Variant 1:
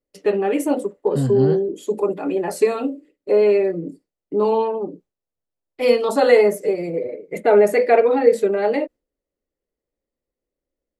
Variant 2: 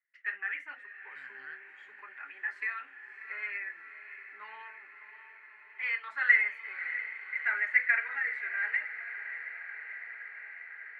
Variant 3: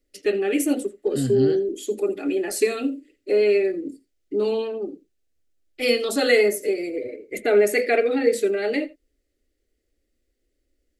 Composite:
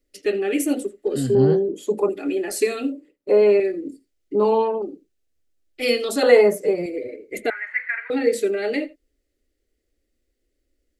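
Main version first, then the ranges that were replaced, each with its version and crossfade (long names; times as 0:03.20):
3
0:01.35–0:02.09: punch in from 1
0:02.92–0:03.60: punch in from 1
0:04.35–0:04.82: punch in from 1
0:06.23–0:06.86: punch in from 1
0:07.50–0:08.10: punch in from 2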